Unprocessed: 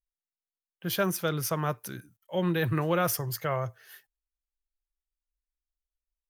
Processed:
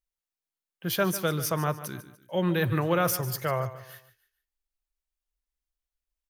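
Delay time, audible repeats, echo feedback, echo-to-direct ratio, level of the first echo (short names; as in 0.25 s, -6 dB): 0.147 s, 3, 35%, -14.0 dB, -14.5 dB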